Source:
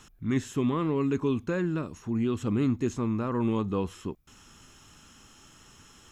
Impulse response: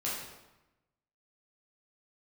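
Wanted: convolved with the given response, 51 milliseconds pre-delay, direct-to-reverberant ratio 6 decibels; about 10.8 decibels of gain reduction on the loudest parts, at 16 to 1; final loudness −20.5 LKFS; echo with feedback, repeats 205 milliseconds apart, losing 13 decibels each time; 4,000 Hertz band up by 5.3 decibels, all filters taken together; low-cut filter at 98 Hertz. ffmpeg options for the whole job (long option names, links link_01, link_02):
-filter_complex "[0:a]highpass=98,equalizer=frequency=4000:width_type=o:gain=7,acompressor=threshold=-33dB:ratio=16,aecho=1:1:205|410|615:0.224|0.0493|0.0108,asplit=2[link_01][link_02];[1:a]atrim=start_sample=2205,adelay=51[link_03];[link_02][link_03]afir=irnorm=-1:irlink=0,volume=-11dB[link_04];[link_01][link_04]amix=inputs=2:normalize=0,volume=17dB"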